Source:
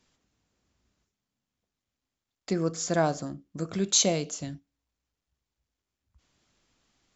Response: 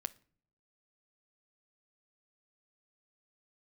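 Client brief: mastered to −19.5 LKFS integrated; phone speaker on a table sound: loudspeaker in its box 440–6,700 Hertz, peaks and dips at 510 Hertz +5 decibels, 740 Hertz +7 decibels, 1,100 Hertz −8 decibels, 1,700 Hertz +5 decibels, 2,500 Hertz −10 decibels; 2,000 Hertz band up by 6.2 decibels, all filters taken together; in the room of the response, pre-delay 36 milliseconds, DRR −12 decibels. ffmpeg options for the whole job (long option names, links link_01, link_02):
-filter_complex "[0:a]equalizer=frequency=2000:width_type=o:gain=7,asplit=2[link_01][link_02];[1:a]atrim=start_sample=2205,adelay=36[link_03];[link_02][link_03]afir=irnorm=-1:irlink=0,volume=13.5dB[link_04];[link_01][link_04]amix=inputs=2:normalize=0,highpass=frequency=440:width=0.5412,highpass=frequency=440:width=1.3066,equalizer=frequency=510:width_type=q:width=4:gain=5,equalizer=frequency=740:width_type=q:width=4:gain=7,equalizer=frequency=1100:width_type=q:width=4:gain=-8,equalizer=frequency=1700:width_type=q:width=4:gain=5,equalizer=frequency=2500:width_type=q:width=4:gain=-10,lowpass=frequency=6700:width=0.5412,lowpass=frequency=6700:width=1.3066,volume=-5dB"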